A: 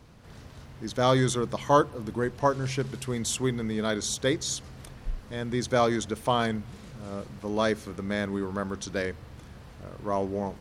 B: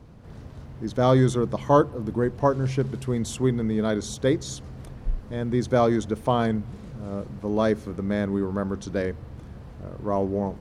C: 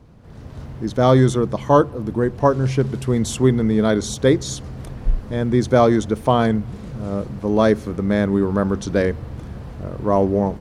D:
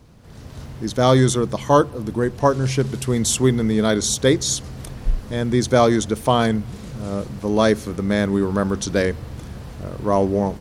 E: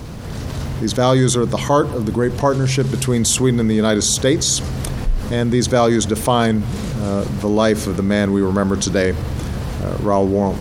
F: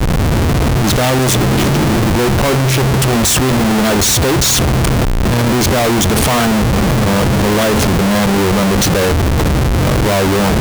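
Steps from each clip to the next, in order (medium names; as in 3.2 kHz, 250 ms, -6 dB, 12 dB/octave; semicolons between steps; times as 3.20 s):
tilt shelf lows +6 dB, about 1.1 kHz
level rider gain up to 8.5 dB
treble shelf 2.8 kHz +11.5 dB; trim -1.5 dB
level flattener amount 50%; trim -1 dB
spectral replace 1.35–2.02 s, 210–2500 Hz; Schmitt trigger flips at -29 dBFS; trim +5.5 dB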